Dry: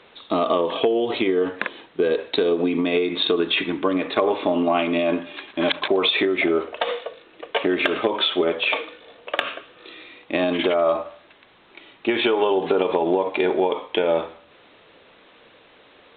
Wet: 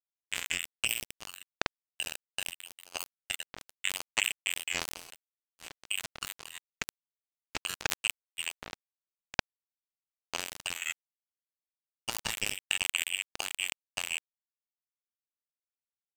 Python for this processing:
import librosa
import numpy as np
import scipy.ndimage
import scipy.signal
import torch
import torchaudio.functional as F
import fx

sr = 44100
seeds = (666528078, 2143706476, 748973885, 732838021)

p1 = fx.freq_invert(x, sr, carrier_hz=3200)
p2 = fx.echo_banded(p1, sr, ms=405, feedback_pct=84, hz=1200.0, wet_db=-22.5)
p3 = fx.power_curve(p2, sr, exponent=3.0)
p4 = fx.level_steps(p3, sr, step_db=19)
p5 = p3 + (p4 * 10.0 ** (0.5 / 20.0))
p6 = np.sign(p5) * np.maximum(np.abs(p5) - 10.0 ** (-34.0 / 20.0), 0.0)
y = fx.sustainer(p6, sr, db_per_s=67.0)